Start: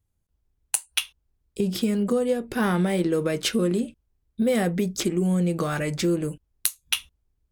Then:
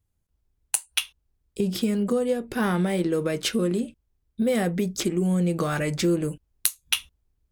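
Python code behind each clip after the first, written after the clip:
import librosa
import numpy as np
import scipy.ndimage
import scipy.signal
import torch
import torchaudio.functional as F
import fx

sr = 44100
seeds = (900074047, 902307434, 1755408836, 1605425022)

y = fx.rider(x, sr, range_db=10, speed_s=2.0)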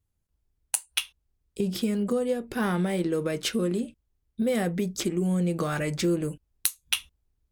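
y = fx.vibrato(x, sr, rate_hz=0.56, depth_cents=5.6)
y = y * 10.0 ** (-2.5 / 20.0)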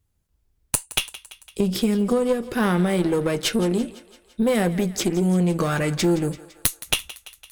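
y = fx.diode_clip(x, sr, knee_db=-23.5)
y = fx.echo_thinned(y, sr, ms=169, feedback_pct=62, hz=470.0, wet_db=-16.5)
y = y * 10.0 ** (7.0 / 20.0)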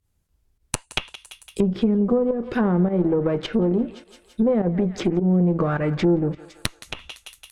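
y = fx.env_lowpass_down(x, sr, base_hz=780.0, full_db=-17.5)
y = fx.volume_shaper(y, sr, bpm=104, per_beat=1, depth_db=-11, release_ms=92.0, shape='fast start')
y = y * 10.0 ** (1.5 / 20.0)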